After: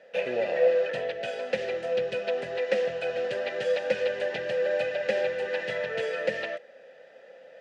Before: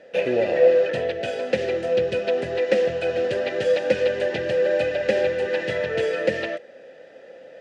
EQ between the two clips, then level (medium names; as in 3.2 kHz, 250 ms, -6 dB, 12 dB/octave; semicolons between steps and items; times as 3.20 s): high-pass 190 Hz 12 dB/octave; peaking EQ 310 Hz -11.5 dB 0.84 oct; treble shelf 5.2 kHz -5 dB; -3.0 dB